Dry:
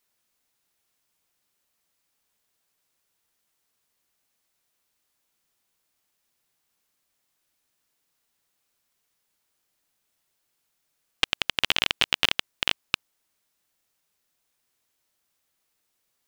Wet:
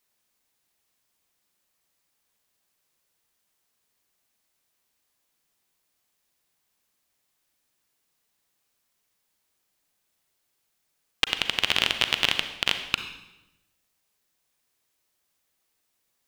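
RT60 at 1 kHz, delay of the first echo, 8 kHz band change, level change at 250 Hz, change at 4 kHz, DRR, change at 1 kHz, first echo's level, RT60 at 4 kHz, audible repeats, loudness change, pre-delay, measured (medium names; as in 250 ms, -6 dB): 0.95 s, no echo, +0.5 dB, +1.0 dB, +0.5 dB, 7.5 dB, +0.5 dB, no echo, 0.85 s, no echo, +0.5 dB, 35 ms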